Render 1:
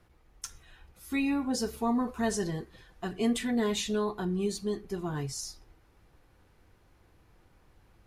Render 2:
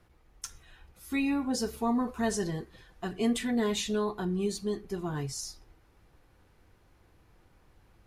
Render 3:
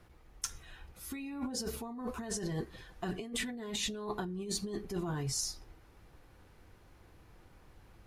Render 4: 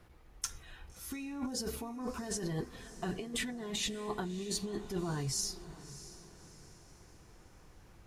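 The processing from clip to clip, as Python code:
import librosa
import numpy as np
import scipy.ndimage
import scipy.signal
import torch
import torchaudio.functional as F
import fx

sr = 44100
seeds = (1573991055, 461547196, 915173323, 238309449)

y1 = x
y2 = fx.over_compress(y1, sr, threshold_db=-36.0, ratio=-1.0)
y2 = y2 * librosa.db_to_amplitude(-2.0)
y3 = fx.echo_diffused(y2, sr, ms=622, feedback_pct=44, wet_db=-15)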